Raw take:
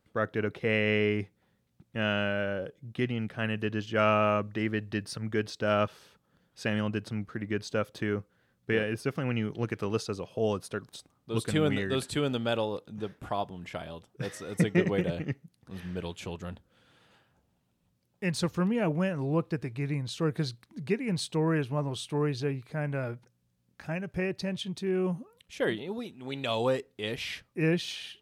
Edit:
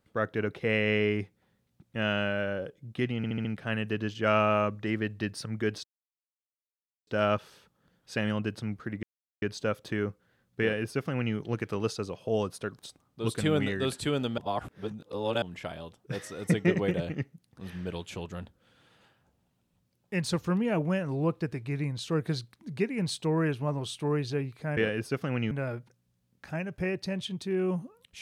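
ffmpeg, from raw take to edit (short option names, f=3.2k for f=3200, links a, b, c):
-filter_complex "[0:a]asplit=11[a][b][c][d][e][f][g][h][i][j][k];[a]atrim=end=3.242[l];[b]atrim=start=3.168:end=3.242[m];[c]atrim=start=3.168:end=3.242[n];[d]atrim=start=3.168:end=3.242[o];[e]atrim=start=3.168:end=5.56,asetpts=PTS-STARTPTS,afade=t=out:st=2.388:d=0.004:c=hsin,apad=pad_dur=1.23[p];[f]atrim=start=5.56:end=7.52,asetpts=PTS-STARTPTS,afade=t=in:d=0.004:c=hsin,afade=t=out:st=1.956:d=0.004:c=hsin,apad=pad_dur=0.39[q];[g]atrim=start=7.52:end=12.482,asetpts=PTS-STARTPTS,afade=t=in:d=0.004:c=hsin[r];[h]atrim=start=12.478:end=13.522,asetpts=PTS-STARTPTS,areverse[s];[i]atrim=start=13.518:end=22.872[t];[j]atrim=start=8.708:end=9.452[u];[k]atrim=start=22.868[v];[l][m]acrossfade=d=0.004:c1=hsin:c2=hsin[w];[w][n]acrossfade=d=0.004:c1=hsin:c2=hsin[x];[x][o]acrossfade=d=0.004:c1=hsin:c2=hsin[y];[p][q][r]concat=n=3:v=0:a=1[z];[y][z]acrossfade=d=0.004:c1=hsin:c2=hsin[aa];[aa][s]acrossfade=d=0.004:c1=hsin:c2=hsin[ab];[ab][t]acrossfade=d=0.004:c1=hsin:c2=hsin[ac];[ac][u]acrossfade=d=0.004:c1=hsin:c2=hsin[ad];[ad][v]acrossfade=d=0.004:c1=hsin:c2=hsin"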